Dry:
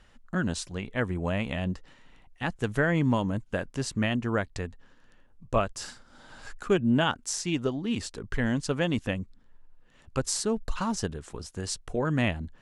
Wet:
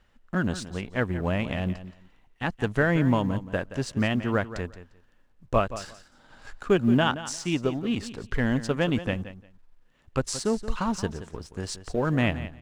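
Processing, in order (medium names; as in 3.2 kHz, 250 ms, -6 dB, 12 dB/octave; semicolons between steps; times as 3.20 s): companding laws mixed up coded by A; treble shelf 6.7 kHz -9.5 dB; on a send: feedback delay 175 ms, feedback 18%, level -13.5 dB; on the sum: trim +3 dB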